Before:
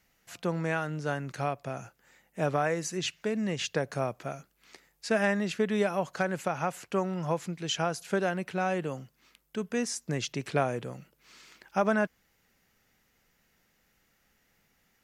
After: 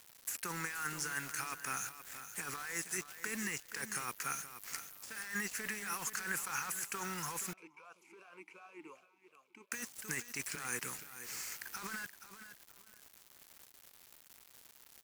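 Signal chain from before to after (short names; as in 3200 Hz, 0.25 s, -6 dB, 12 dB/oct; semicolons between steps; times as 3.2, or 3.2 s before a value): differentiator; negative-ratio compressor -53 dBFS, ratio -1; fixed phaser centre 1500 Hz, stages 4; bit-crush 10-bit; feedback echo 0.475 s, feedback 22%, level -11.5 dB; 7.53–9.72 vowel sweep a-u 2.7 Hz; gain +14 dB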